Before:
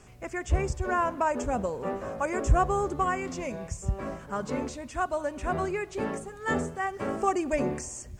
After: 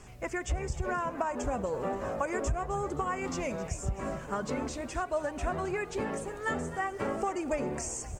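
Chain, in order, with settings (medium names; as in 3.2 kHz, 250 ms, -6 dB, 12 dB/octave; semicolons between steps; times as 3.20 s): compression 10:1, threshold -30 dBFS, peak gain reduction 15.5 dB; flange 1.5 Hz, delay 0.9 ms, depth 1.4 ms, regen +74%; on a send: frequency-shifting echo 263 ms, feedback 50%, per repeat +86 Hz, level -15 dB; on the sum: trim +6.5 dB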